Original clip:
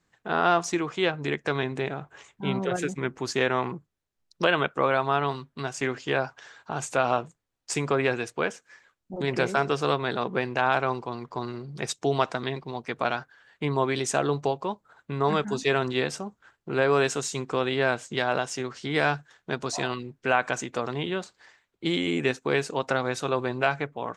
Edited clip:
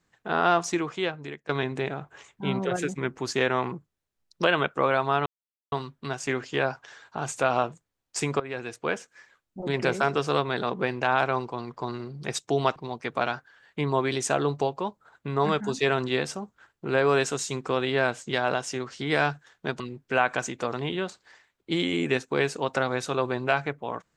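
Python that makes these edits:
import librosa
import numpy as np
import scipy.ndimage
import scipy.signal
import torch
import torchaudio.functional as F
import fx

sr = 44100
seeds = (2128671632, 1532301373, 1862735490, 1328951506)

y = fx.edit(x, sr, fx.fade_out_to(start_s=0.8, length_s=0.69, floor_db=-21.5),
    fx.insert_silence(at_s=5.26, length_s=0.46),
    fx.fade_in_from(start_s=7.94, length_s=0.56, floor_db=-17.5),
    fx.cut(start_s=12.3, length_s=0.3),
    fx.cut(start_s=19.64, length_s=0.3), tone=tone)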